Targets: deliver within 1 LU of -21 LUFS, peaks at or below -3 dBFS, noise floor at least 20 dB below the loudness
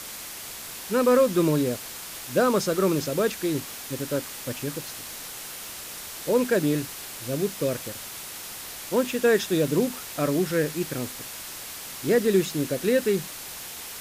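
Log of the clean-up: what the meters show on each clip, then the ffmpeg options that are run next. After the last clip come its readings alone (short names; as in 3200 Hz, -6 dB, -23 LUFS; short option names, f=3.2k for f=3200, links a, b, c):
noise floor -38 dBFS; noise floor target -47 dBFS; loudness -26.5 LUFS; peak -9.5 dBFS; loudness target -21.0 LUFS
-> -af "afftdn=nr=9:nf=-38"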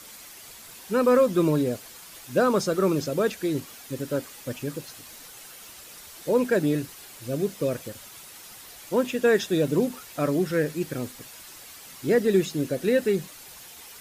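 noise floor -46 dBFS; loudness -25.5 LUFS; peak -10.0 dBFS; loudness target -21.0 LUFS
-> -af "volume=4.5dB"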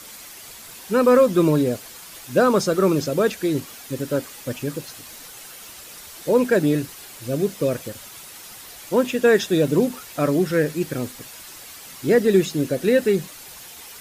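loudness -21.0 LUFS; peak -5.5 dBFS; noise floor -41 dBFS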